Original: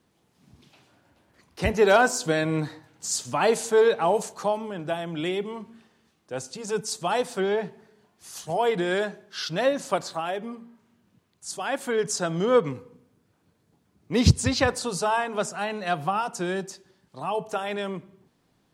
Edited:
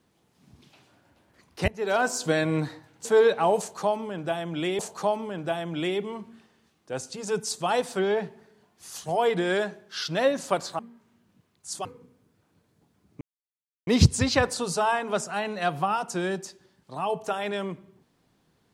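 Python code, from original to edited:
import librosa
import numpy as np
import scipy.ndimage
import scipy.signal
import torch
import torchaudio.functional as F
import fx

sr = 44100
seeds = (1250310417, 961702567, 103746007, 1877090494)

y = fx.edit(x, sr, fx.fade_in_from(start_s=1.68, length_s=0.62, floor_db=-23.5),
    fx.cut(start_s=3.05, length_s=0.61),
    fx.repeat(start_s=4.2, length_s=1.2, count=2),
    fx.cut(start_s=10.2, length_s=0.37),
    fx.cut(start_s=11.63, length_s=1.13),
    fx.insert_silence(at_s=14.12, length_s=0.66), tone=tone)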